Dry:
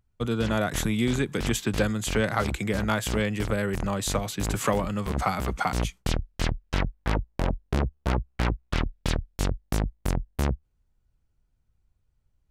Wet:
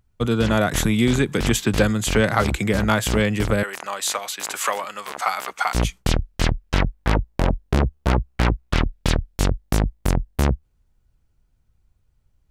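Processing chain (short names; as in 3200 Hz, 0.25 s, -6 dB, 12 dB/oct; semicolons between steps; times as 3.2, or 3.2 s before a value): 3.63–5.75 HPF 850 Hz 12 dB/oct; gain +6.5 dB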